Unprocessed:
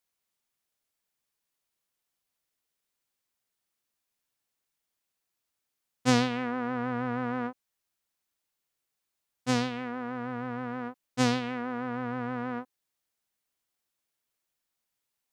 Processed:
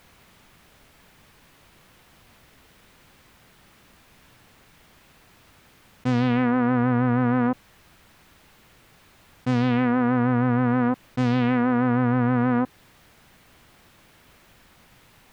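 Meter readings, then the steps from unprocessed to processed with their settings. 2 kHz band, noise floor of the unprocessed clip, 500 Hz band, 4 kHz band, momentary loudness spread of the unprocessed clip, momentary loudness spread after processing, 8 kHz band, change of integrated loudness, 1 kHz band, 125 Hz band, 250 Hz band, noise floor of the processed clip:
+6.0 dB, -84 dBFS, +7.0 dB, -3.0 dB, 11 LU, 5 LU, no reading, +9.0 dB, +7.0 dB, +13.0 dB, +10.5 dB, -56 dBFS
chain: tone controls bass +9 dB, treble -14 dB; level flattener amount 100%; trim -5 dB

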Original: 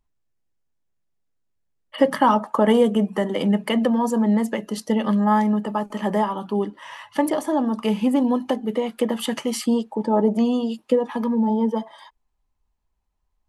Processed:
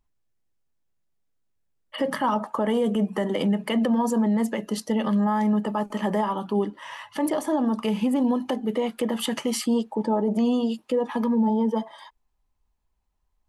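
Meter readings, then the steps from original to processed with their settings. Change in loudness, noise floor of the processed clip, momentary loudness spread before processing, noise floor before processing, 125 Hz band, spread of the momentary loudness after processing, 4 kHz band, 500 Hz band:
-3.0 dB, -72 dBFS, 8 LU, -72 dBFS, no reading, 6 LU, -2.0 dB, -4.0 dB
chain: peak limiter -15.5 dBFS, peak gain reduction 10 dB

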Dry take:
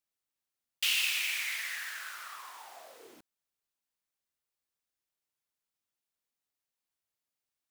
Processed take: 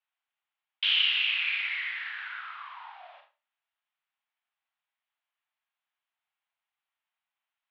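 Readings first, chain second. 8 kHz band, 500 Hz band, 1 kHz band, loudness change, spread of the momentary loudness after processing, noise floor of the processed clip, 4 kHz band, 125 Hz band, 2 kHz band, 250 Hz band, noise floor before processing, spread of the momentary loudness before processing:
under -30 dB, -4.5 dB, +4.0 dB, +4.5 dB, 20 LU, under -85 dBFS, +7.0 dB, no reading, +5.0 dB, under -30 dB, under -85 dBFS, 20 LU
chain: Schroeder reverb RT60 0.31 s, combs from 28 ms, DRR 4 dB; mistuned SSB +270 Hz 420–3100 Hz; trim +5.5 dB

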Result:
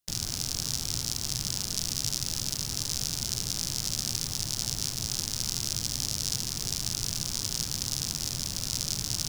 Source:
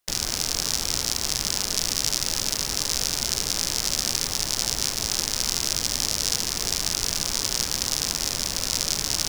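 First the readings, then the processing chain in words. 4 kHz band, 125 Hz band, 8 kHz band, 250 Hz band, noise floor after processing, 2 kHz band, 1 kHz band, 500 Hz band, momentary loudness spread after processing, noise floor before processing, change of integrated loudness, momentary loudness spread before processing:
-6.5 dB, +1.5 dB, -6.0 dB, -3.5 dB, -36 dBFS, -11.0 dB, -11.0 dB, -10.5 dB, 1 LU, -31 dBFS, -6.0 dB, 1 LU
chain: ten-band graphic EQ 125 Hz +10 dB, 500 Hz -6 dB, 1 kHz -4 dB, 2 kHz -6 dB; trim -5.5 dB

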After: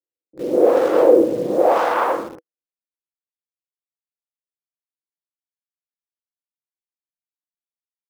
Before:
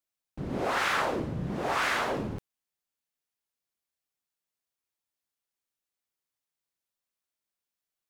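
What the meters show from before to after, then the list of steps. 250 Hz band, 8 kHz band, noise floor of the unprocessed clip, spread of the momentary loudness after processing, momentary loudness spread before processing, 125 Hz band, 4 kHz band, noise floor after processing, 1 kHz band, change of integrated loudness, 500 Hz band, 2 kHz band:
+13.0 dB, no reading, under -85 dBFS, 13 LU, 11 LU, -5.0 dB, -3.5 dB, under -85 dBFS, +9.5 dB, +13.0 dB, +19.5 dB, -0.5 dB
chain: tracing distortion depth 0.4 ms; treble shelf 2.9 kHz +4 dB; band-pass sweep 480 Hz -> 6.9 kHz, 1.43–3.68 s; level rider gain up to 9 dB; bass shelf 98 Hz -6 dB; small resonant body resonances 330/490 Hz, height 13 dB, ringing for 45 ms; on a send: reverse echo 42 ms -9.5 dB; on the sum: level-controlled noise filter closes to 310 Hz, open at -16 dBFS; in parallel at -10 dB: bit crusher 6-bit; on the sum: trim +3 dB

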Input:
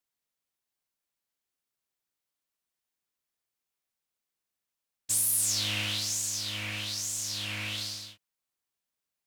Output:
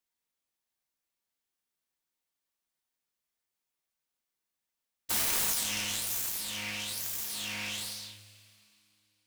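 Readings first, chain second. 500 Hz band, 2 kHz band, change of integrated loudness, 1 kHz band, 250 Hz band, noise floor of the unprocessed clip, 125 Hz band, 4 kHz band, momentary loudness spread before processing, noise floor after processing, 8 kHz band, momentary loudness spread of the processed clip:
+1.5 dB, -1.0 dB, -2.0 dB, +3.5 dB, -1.5 dB, under -85 dBFS, -9.0 dB, -3.5 dB, 11 LU, under -85 dBFS, -4.5 dB, 11 LU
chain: self-modulated delay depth 0.25 ms; two-slope reverb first 0.23 s, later 2.8 s, from -18 dB, DRR 4 dB; trim -1.5 dB

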